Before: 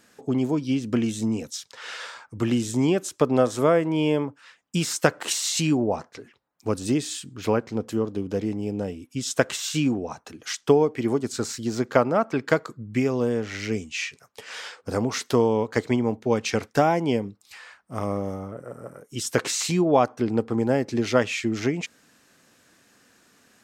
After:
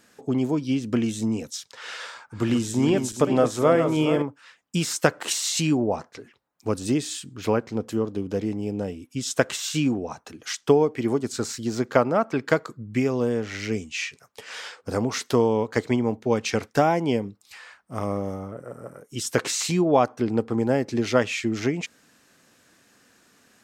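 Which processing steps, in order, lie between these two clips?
0:02.07–0:04.22: feedback delay that plays each chunk backwards 211 ms, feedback 61%, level −7.5 dB

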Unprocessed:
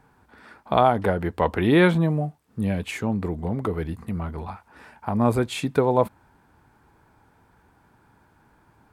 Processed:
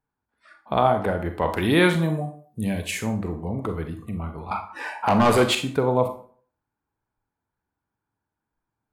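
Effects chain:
noise reduction from a noise print of the clip's start 24 dB
0:01.50–0:03.03: high-shelf EQ 3,200 Hz +12 dB
0:04.51–0:05.55: mid-hump overdrive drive 26 dB, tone 4,400 Hz, clips at −7 dBFS
convolution reverb RT60 0.50 s, pre-delay 27 ms, DRR 6.5 dB
level −2.5 dB

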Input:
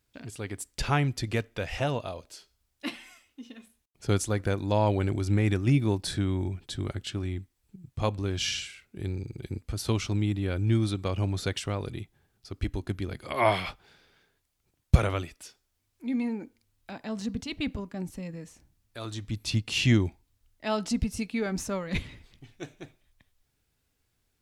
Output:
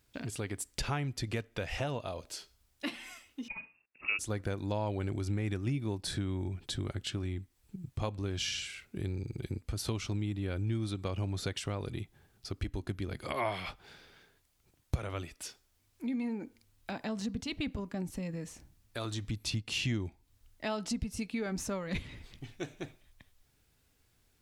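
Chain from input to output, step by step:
downward compressor 3 to 1, threshold −40 dBFS, peak gain reduction 21 dB
0:03.48–0:04.19: voice inversion scrambler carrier 2,700 Hz
level +4.5 dB

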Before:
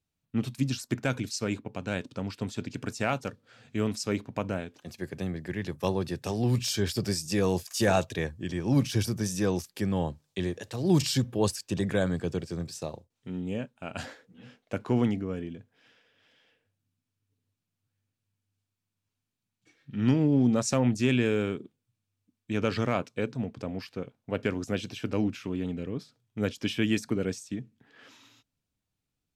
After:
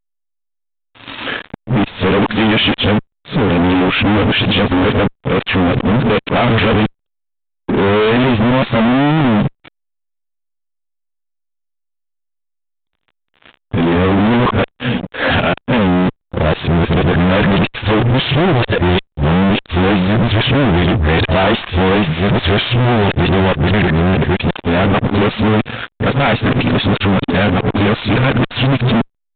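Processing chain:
played backwards from end to start
fuzz pedal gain 50 dB, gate −56 dBFS
level +2.5 dB
A-law companding 64 kbit/s 8,000 Hz

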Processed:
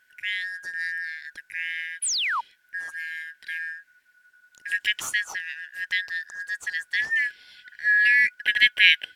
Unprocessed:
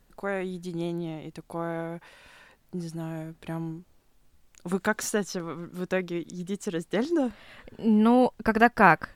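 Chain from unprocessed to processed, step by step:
band-splitting scrambler in four parts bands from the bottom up 4123
sound drawn into the spectrogram fall, 0:02.02–0:02.41, 870–11,000 Hz −26 dBFS
in parallel at −12 dB: dead-zone distortion −39.5 dBFS
on the sum: level −1 dB

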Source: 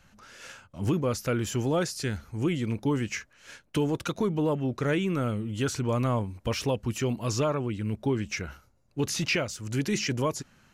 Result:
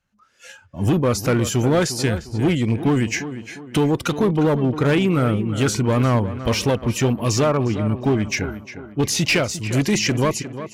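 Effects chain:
noise reduction from a noise print of the clip's start 16 dB
asymmetric clip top −25 dBFS, bottom −20 dBFS
automatic gain control gain up to 9.5 dB
on a send: tape delay 354 ms, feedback 45%, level −10 dB, low-pass 2,500 Hz

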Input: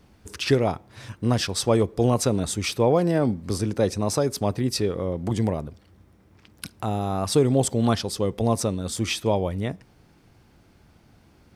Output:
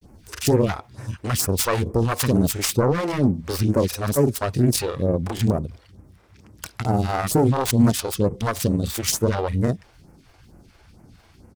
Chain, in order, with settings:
phase distortion by the signal itself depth 0.43 ms
granular cloud, spray 33 ms, pitch spread up and down by 0 semitones
brickwall limiter −15.5 dBFS, peak gain reduction 7.5 dB
all-pass phaser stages 2, 2.2 Hz, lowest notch 150–3,500 Hz
level +7.5 dB

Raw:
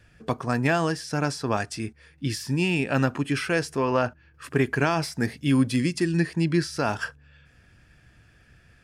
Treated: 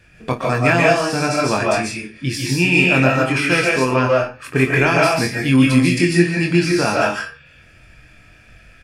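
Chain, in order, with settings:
parametric band 2,400 Hz +9.5 dB 0.21 octaves
ambience of single reflections 23 ms −4 dB, 57 ms −15.5 dB
convolution reverb RT60 0.35 s, pre-delay 105 ms, DRR −2 dB
level +4 dB

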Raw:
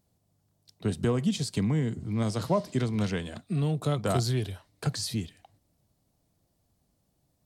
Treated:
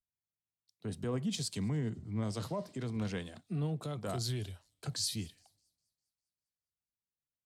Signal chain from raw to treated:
brickwall limiter −22 dBFS, peak gain reduction 8 dB
delay with a high-pass on its return 205 ms, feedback 74%, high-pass 5,000 Hz, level −21 dB
pitch vibrato 0.37 Hz 43 cents
multiband upward and downward expander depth 70%
level −6.5 dB

